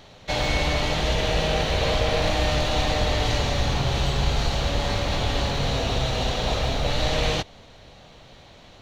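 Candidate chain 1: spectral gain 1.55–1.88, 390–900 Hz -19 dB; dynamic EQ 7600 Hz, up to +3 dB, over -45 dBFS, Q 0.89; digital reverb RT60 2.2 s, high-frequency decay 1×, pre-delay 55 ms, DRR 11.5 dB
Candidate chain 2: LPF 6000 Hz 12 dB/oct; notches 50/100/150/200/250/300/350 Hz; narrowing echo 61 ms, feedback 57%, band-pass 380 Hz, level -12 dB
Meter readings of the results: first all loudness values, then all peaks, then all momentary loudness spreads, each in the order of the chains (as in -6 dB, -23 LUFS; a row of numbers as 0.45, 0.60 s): -23.5, -24.5 LUFS; -8.0, -9.0 dBFS; 3, 3 LU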